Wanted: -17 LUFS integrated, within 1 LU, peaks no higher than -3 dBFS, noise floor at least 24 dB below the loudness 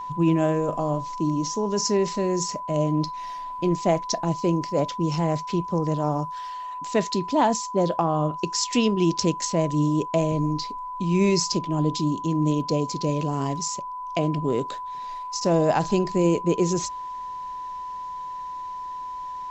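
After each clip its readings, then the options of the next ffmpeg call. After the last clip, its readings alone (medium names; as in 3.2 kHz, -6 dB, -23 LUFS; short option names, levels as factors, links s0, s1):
steady tone 1 kHz; tone level -31 dBFS; loudness -25.0 LUFS; peak level -9.5 dBFS; loudness target -17.0 LUFS
-> -af "bandreject=f=1000:w=30"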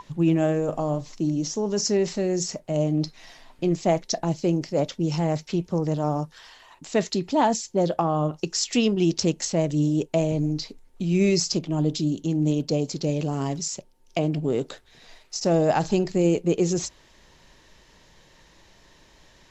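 steady tone not found; loudness -24.5 LUFS; peak level -9.5 dBFS; loudness target -17.0 LUFS
-> -af "volume=2.37,alimiter=limit=0.708:level=0:latency=1"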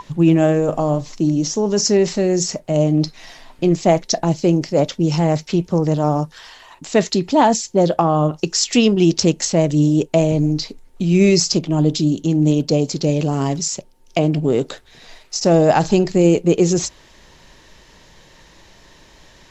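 loudness -17.5 LUFS; peak level -3.0 dBFS; noise floor -49 dBFS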